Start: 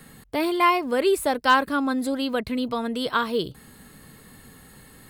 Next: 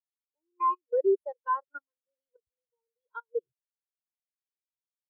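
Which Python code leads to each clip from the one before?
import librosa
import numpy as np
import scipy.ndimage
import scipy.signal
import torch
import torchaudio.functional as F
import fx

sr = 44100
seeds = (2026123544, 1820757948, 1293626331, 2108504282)

y = fx.level_steps(x, sr, step_db=22)
y = y + 0.93 * np.pad(y, (int(2.1 * sr / 1000.0), 0))[:len(y)]
y = fx.spectral_expand(y, sr, expansion=2.5)
y = F.gain(torch.from_numpy(y), -8.0).numpy()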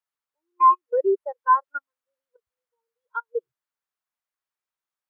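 y = fx.peak_eq(x, sr, hz=1200.0, db=11.5, octaves=1.9)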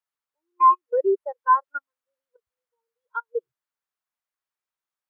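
y = x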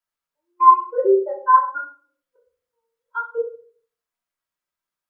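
y = fx.room_shoebox(x, sr, seeds[0], volume_m3=420.0, walls='furnished', distance_m=2.9)
y = F.gain(torch.from_numpy(y), -1.0).numpy()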